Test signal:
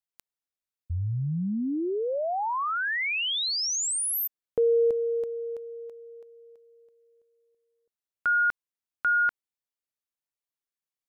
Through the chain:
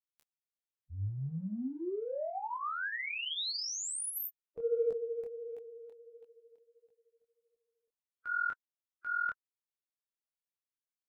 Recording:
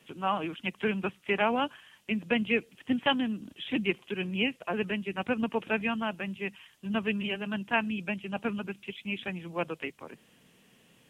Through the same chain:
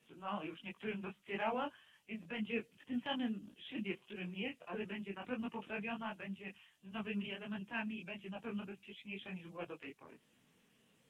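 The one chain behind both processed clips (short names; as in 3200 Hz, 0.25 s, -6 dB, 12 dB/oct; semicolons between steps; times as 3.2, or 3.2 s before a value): bin magnitudes rounded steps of 15 dB; transient shaper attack -7 dB, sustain -1 dB; detuned doubles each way 50 cents; gain -5.5 dB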